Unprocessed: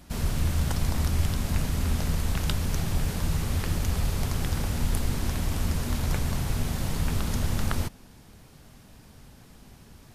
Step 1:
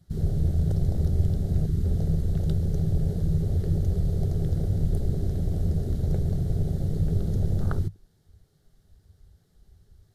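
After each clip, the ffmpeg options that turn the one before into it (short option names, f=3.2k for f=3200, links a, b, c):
-af "afwtdn=0.0251,equalizer=f=100:t=o:w=0.33:g=8,equalizer=f=160:t=o:w=0.33:g=7,equalizer=f=250:t=o:w=0.33:g=-7,equalizer=f=400:t=o:w=0.33:g=8,equalizer=f=1k:t=o:w=0.33:g=-10,equalizer=f=2.5k:t=o:w=0.33:g=-12,equalizer=f=4k:t=o:w=0.33:g=4"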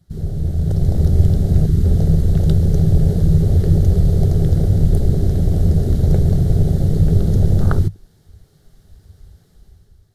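-af "dynaudnorm=f=300:g=5:m=10dB,volume=2dB"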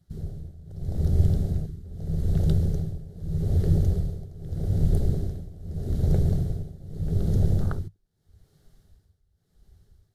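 -af "tremolo=f=0.81:d=0.9,volume=-7.5dB"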